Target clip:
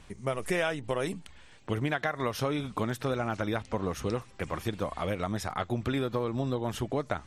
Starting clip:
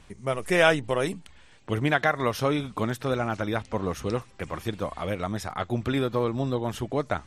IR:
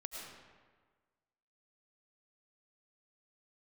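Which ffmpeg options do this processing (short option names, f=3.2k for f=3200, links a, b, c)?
-af "acompressor=threshold=-26dB:ratio=6"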